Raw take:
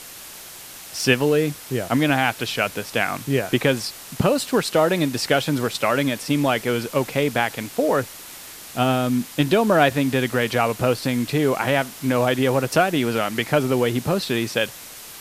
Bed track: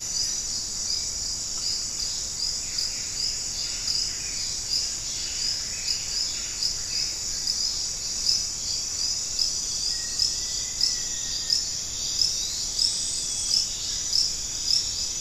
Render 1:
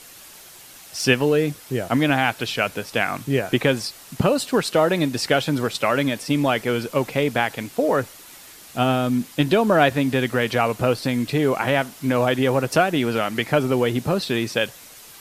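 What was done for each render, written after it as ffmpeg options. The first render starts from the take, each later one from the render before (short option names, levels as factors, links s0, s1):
-af "afftdn=nr=6:nf=-40"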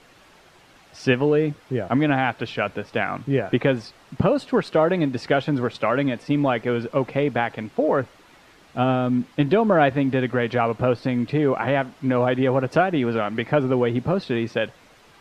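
-af "lowpass=f=2300:p=1,aemphasis=mode=reproduction:type=50kf"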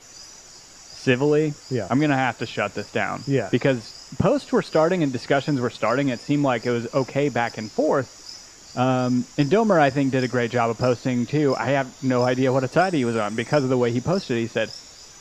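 -filter_complex "[1:a]volume=0.15[s0];[0:a][s0]amix=inputs=2:normalize=0"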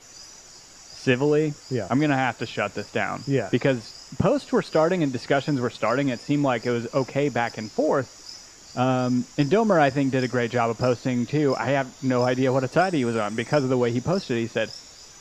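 -af "volume=0.841"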